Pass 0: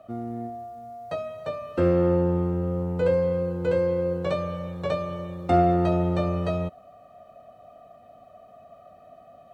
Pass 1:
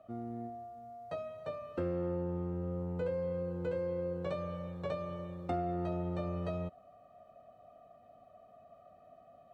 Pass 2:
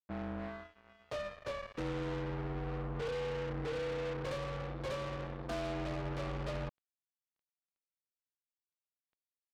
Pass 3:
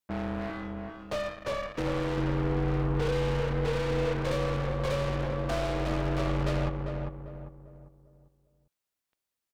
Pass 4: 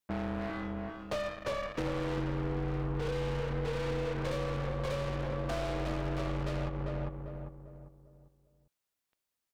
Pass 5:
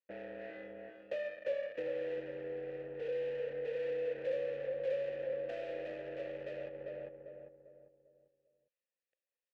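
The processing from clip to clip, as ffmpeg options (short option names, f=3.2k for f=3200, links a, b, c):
-af "lowpass=f=2k:p=1,acompressor=threshold=-24dB:ratio=4,aemphasis=mode=production:type=cd,volume=-8dB"
-af "aresample=11025,asoftclip=type=tanh:threshold=-37.5dB,aresample=44100,afreqshift=-35,acrusher=bits=6:mix=0:aa=0.5,volume=2.5dB"
-filter_complex "[0:a]aeval=exprs='clip(val(0),-1,0.0133)':c=same,asplit=2[a][b];[b]adelay=397,lowpass=f=1.2k:p=1,volume=-3.5dB,asplit=2[c][d];[d]adelay=397,lowpass=f=1.2k:p=1,volume=0.4,asplit=2[e][f];[f]adelay=397,lowpass=f=1.2k:p=1,volume=0.4,asplit=2[g][h];[h]adelay=397,lowpass=f=1.2k:p=1,volume=0.4,asplit=2[i][j];[j]adelay=397,lowpass=f=1.2k:p=1,volume=0.4[k];[c][e][g][i][k]amix=inputs=5:normalize=0[l];[a][l]amix=inputs=2:normalize=0,volume=8.5dB"
-af "acompressor=threshold=-30dB:ratio=6"
-filter_complex "[0:a]asplit=3[a][b][c];[a]bandpass=f=530:t=q:w=8,volume=0dB[d];[b]bandpass=f=1.84k:t=q:w=8,volume=-6dB[e];[c]bandpass=f=2.48k:t=q:w=8,volume=-9dB[f];[d][e][f]amix=inputs=3:normalize=0,volume=4dB"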